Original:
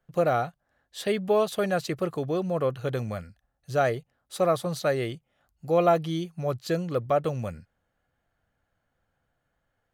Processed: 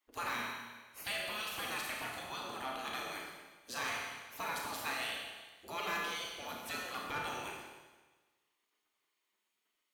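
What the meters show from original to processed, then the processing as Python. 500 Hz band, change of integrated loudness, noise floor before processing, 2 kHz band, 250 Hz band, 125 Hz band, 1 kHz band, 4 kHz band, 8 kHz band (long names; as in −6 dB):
−22.5 dB, −12.0 dB, −78 dBFS, −1.0 dB, −19.5 dB, −25.5 dB, −10.0 dB, 0.0 dB, −1.5 dB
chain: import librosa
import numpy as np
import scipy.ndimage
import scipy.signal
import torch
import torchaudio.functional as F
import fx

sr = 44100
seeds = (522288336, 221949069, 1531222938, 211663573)

y = fx.spec_gate(x, sr, threshold_db=-20, keep='weak')
y = fx.rev_schroeder(y, sr, rt60_s=1.3, comb_ms=26, drr_db=-0.5)
y = 10.0 ** (-32.5 / 20.0) * np.tanh(y / 10.0 ** (-32.5 / 20.0))
y = F.gain(torch.from_numpy(y), 2.0).numpy()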